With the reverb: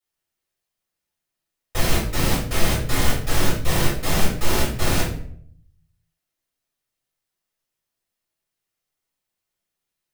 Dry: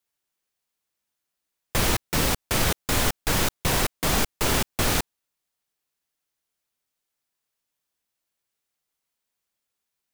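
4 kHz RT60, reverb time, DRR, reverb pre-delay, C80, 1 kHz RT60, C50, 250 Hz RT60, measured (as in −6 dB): 0.40 s, 0.60 s, −10.5 dB, 3 ms, 8.5 dB, 0.55 s, 3.5 dB, 0.85 s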